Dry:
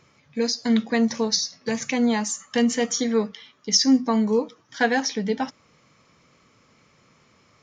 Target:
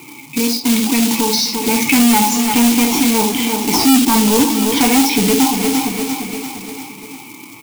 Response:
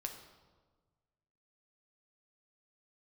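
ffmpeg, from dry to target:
-filter_complex "[0:a]asettb=1/sr,asplit=3[s0][s1][s2];[s0]atrim=end=2.414[s3];[s1]atrim=start=2.41:end=3.87,asetpts=PTS-STARTPTS,afade=t=in:d=0.004:c=qsin,afade=t=out:st=1.456:d=0.004:c=qsin,aeval=exprs='max(val(0),0)':c=same[s4];[s2]atrim=start=3.866[s5];[s3][s4]acrossfade=d=0.004:c1=hsin:c2=qsin[s6];[s6][s5]acrossfade=d=0.004:c1=qsin:c2=hsin,asplit=3[s7][s8][s9];[s7]bandpass=f=300:t=q:w=8,volume=1[s10];[s8]bandpass=f=870:t=q:w=8,volume=0.501[s11];[s9]bandpass=f=2240:t=q:w=8,volume=0.355[s12];[s10][s11][s12]amix=inputs=3:normalize=0[s13];[1:a]atrim=start_sample=2205,atrim=end_sample=3528,asetrate=41454,aresample=44100[s14];[s13][s14]afir=irnorm=-1:irlink=0,asplit=2[s15][s16];[s16]acompressor=threshold=0.00708:ratio=10,volume=0.794[s17];[s15][s17]amix=inputs=2:normalize=0,aemphasis=mode=reproduction:type=75fm,acrusher=bits=3:mode=log:mix=0:aa=0.000001,aexciter=amount=3.2:drive=6.4:freq=2500,dynaudnorm=f=210:g=17:m=3.76,asoftclip=type=tanh:threshold=0.0531,aecho=1:1:346|692|1038|1384|1730:0.158|0.0903|0.0515|0.0294|0.0167,alimiter=level_in=59.6:limit=0.891:release=50:level=0:latency=1,volume=0.501"

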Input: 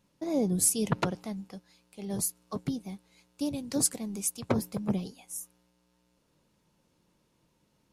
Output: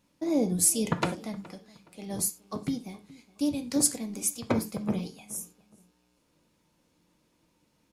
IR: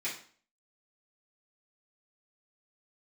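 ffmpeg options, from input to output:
-filter_complex "[0:a]asplit=2[s0][s1];[s1]adelay=419,lowpass=f=2900:p=1,volume=0.0944,asplit=2[s2][s3];[s3]adelay=419,lowpass=f=2900:p=1,volume=0.31[s4];[s0][s2][s4]amix=inputs=3:normalize=0,asplit=2[s5][s6];[1:a]atrim=start_sample=2205,afade=t=out:st=0.16:d=0.01,atrim=end_sample=7497[s7];[s6][s7]afir=irnorm=-1:irlink=0,volume=0.398[s8];[s5][s8]amix=inputs=2:normalize=0"

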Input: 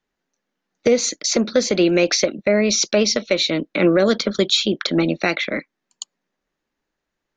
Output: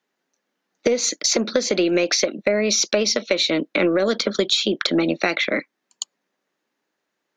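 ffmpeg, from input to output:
-af "highpass=230,acompressor=threshold=0.112:ratio=8,aeval=exprs='0.376*(cos(1*acos(clip(val(0)/0.376,-1,1)))-cos(1*PI/2))+0.0168*(cos(2*acos(clip(val(0)/0.376,-1,1)))-cos(2*PI/2))':c=same,volume=1.5"

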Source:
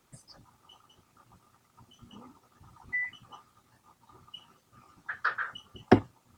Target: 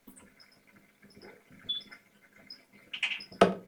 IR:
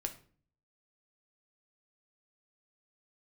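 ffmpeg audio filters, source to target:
-filter_complex "[0:a]asplit=2[s0][s1];[s1]adelay=186.6,volume=0.0447,highshelf=f=4000:g=-4.2[s2];[s0][s2]amix=inputs=2:normalize=0[s3];[1:a]atrim=start_sample=2205[s4];[s3][s4]afir=irnorm=-1:irlink=0,asetrate=76440,aresample=44100"

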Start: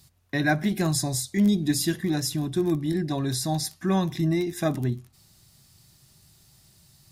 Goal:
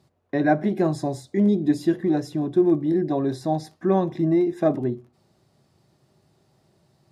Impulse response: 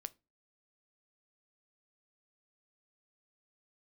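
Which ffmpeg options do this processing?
-filter_complex "[0:a]bandpass=f=470:t=q:w=1.3:csg=0,asplit=2[s0][s1];[1:a]atrim=start_sample=2205,highshelf=f=6900:g=7[s2];[s1][s2]afir=irnorm=-1:irlink=0,volume=1.06[s3];[s0][s3]amix=inputs=2:normalize=0,volume=1.68"

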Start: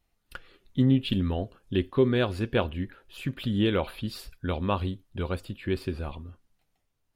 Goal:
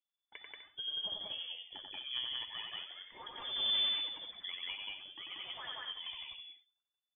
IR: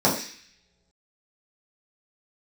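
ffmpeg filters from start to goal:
-filter_complex "[0:a]asettb=1/sr,asplit=3[s0][s1][s2];[s0]atrim=end=5.374[s3];[s1]atrim=start=5.37:end=5.8,asetpts=PTS-STARTPTS,afade=t=in:d=0.004:c=qsin,afade=t=out:st=0.426:d=0.004:c=qsin,aeval=exprs='val(0)+0.5*0.0126*sgn(val(0))':c=same[s4];[s2]atrim=start=5.796[s5];[s3][s4]acrossfade=d=0.004:c1=hsin:c2=qsin[s6];[s6][s5]acrossfade=d=0.004:c1=qsin:c2=hsin,bandreject=f=65.1:t=h:w=4,bandreject=f=130.2:t=h:w=4,bandreject=f=195.3:t=h:w=4,bandreject=f=260.4:t=h:w=4,bandreject=f=325.5:t=h:w=4,bandreject=f=390.6:t=h:w=4,bandreject=f=455.7:t=h:w=4,bandreject=f=520.8:t=h:w=4,bandreject=f=585.9:t=h:w=4,bandreject=f=651:t=h:w=4,bandreject=f=716.1:t=h:w=4,bandreject=f=781.2:t=h:w=4,bandreject=f=846.3:t=h:w=4,bandreject=f=911.4:t=h:w=4,bandreject=f=976.5:t=h:w=4,bandreject=f=1041.6:t=h:w=4,bandreject=f=1106.7:t=h:w=4,bandreject=f=1171.8:t=h:w=4,bandreject=f=1236.9:t=h:w=4,bandreject=f=1302:t=h:w=4,bandreject=f=1367.1:t=h:w=4,bandreject=f=1432.2:t=h:w=4,bandreject=f=1497.3:t=h:w=4,bandreject=f=1562.4:t=h:w=4,bandreject=f=1627.5:t=h:w=4,bandreject=f=1692.6:t=h:w=4,bandreject=f=1757.7:t=h:w=4,agate=range=0.112:threshold=0.00282:ratio=16:detection=peak,lowshelf=f=300:g=-8.5,acompressor=threshold=0.00891:ratio=4,asettb=1/sr,asplit=3[s7][s8][s9];[s7]atrim=end=3.364[s10];[s8]atrim=start=3.36:end=4.03,asetpts=PTS-STARTPTS,afade=t=in:d=0.004:c=qsin,afade=t=out:st=0.666:d=0.004:c=qsin,aeval=exprs='0.0376*(cos(1*acos(clip(val(0)/0.0376,-1,1)))-cos(1*PI/2))+0.00531*(cos(4*acos(clip(val(0)/0.0376,-1,1)))-cos(4*PI/2))+0.00473*(cos(8*acos(clip(val(0)/0.0376,-1,1)))-cos(8*PI/2))':c=same[s11];[s9]atrim=start=4.026[s12];[s10][s11]acrossfade=d=0.004:c1=hsin:c2=qsin[s13];[s13][s12]acrossfade=d=0.004:c1=qsin:c2=hsin,aphaser=in_gain=1:out_gain=1:delay=4.9:decay=0.64:speed=0.46:type=triangular,aecho=1:1:90.38|183.7|250.7:0.708|1|0.316,lowpass=f=3000:t=q:w=0.5098,lowpass=f=3000:t=q:w=0.6013,lowpass=f=3000:t=q:w=0.9,lowpass=f=3000:t=q:w=2.563,afreqshift=-3500,volume=0.473"

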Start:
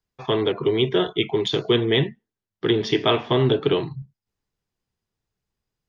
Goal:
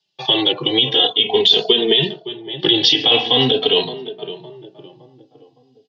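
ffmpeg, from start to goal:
-filter_complex "[0:a]aexciter=amount=14.3:drive=2.1:freq=3100,highpass=f=140:w=0.5412,highpass=f=140:w=1.3066,equalizer=f=480:t=q:w=4:g=5,equalizer=f=780:t=q:w=4:g=10,equalizer=f=1300:t=q:w=4:g=-6,equalizer=f=1900:t=q:w=4:g=5,equalizer=f=2900:t=q:w=4:g=7,lowpass=f=4200:w=0.5412,lowpass=f=4200:w=1.3066,asplit=2[s0][s1];[s1]adelay=563,lowpass=f=1200:p=1,volume=0.158,asplit=2[s2][s3];[s3]adelay=563,lowpass=f=1200:p=1,volume=0.46,asplit=2[s4][s5];[s5]adelay=563,lowpass=f=1200:p=1,volume=0.46,asplit=2[s6][s7];[s7]adelay=563,lowpass=f=1200:p=1,volume=0.46[s8];[s2][s4][s6][s8]amix=inputs=4:normalize=0[s9];[s0][s9]amix=inputs=2:normalize=0,alimiter=level_in=1.68:limit=0.891:release=50:level=0:latency=1,asplit=2[s10][s11];[s11]adelay=2.9,afreqshift=-0.44[s12];[s10][s12]amix=inputs=2:normalize=1,volume=1.19"

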